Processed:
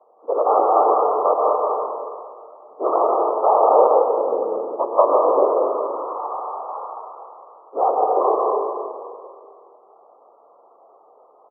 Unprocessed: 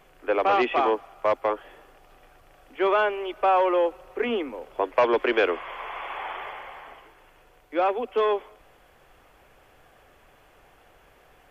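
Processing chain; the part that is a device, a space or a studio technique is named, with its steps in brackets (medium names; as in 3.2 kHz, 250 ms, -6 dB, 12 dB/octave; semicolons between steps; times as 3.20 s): Chebyshev low-pass 1.2 kHz, order 10; low-pass 1.4 kHz; whispering ghost (whisper effect; high-pass 430 Hz 24 dB/octave; reverberation RT60 2.2 s, pre-delay 112 ms, DRR -1 dB); 6.73–7.84 s: peaking EQ 1.5 kHz +4.5 dB 1.9 oct; multi-tap echo 50/102 ms -14/-11.5 dB; trim +5 dB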